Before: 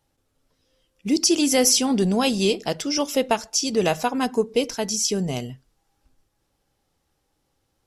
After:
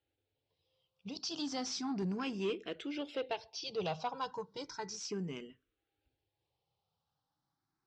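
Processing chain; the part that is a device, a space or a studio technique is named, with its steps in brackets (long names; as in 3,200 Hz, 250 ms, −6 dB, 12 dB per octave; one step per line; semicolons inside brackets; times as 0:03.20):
0:04.13–0:05.09: comb filter 2.1 ms, depth 83%
barber-pole phaser into a guitar amplifier (frequency shifter mixed with the dry sound +0.34 Hz; soft clipping −18.5 dBFS, distortion −14 dB; loudspeaker in its box 84–4,600 Hz, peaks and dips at 230 Hz −9 dB, 590 Hz −6 dB, 1,900 Hz −4 dB)
level −8.5 dB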